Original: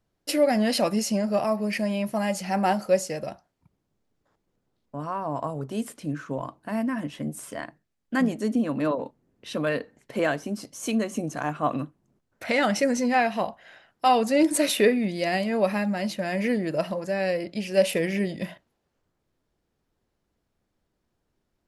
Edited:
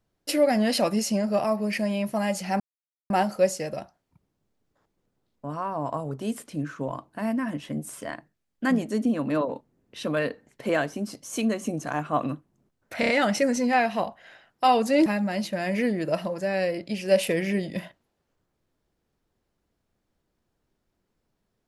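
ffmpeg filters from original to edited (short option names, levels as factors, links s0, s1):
-filter_complex "[0:a]asplit=6[s0][s1][s2][s3][s4][s5];[s0]atrim=end=2.6,asetpts=PTS-STARTPTS,afade=t=out:st=2.596:d=0.004:c=hsin,apad=pad_dur=0.5[s6];[s1]atrim=start=2.6:end=12.532,asetpts=PTS-STARTPTS,afade=t=in:d=0.004:c=hsin[s7];[s2]atrim=start=12.498:end=12.532[s8];[s3]atrim=start=12.498:end=12.532[s9];[s4]atrim=start=12.498:end=14.472[s10];[s5]atrim=start=15.718[s11];[s6][s7]concat=n=2:v=0:a=1[s12];[s12][s8]acrossfade=d=0.004:c1=hsin:c2=hsin[s13];[s13][s9]acrossfade=d=0.004:c1=hsin:c2=hsin[s14];[s14][s10]acrossfade=d=0.004:c1=hsin:c2=hsin[s15];[s15][s11]acrossfade=d=0.004:c1=hsin:c2=hsin"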